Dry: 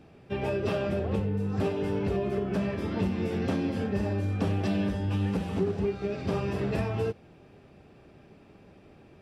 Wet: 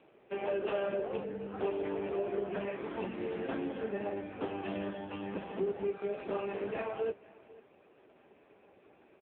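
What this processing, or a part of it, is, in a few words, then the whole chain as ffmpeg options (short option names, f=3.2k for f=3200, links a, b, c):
satellite phone: -af "highpass=390,lowpass=3.3k,aecho=1:1:494:0.0841" -ar 8000 -c:a libopencore_amrnb -b:a 5900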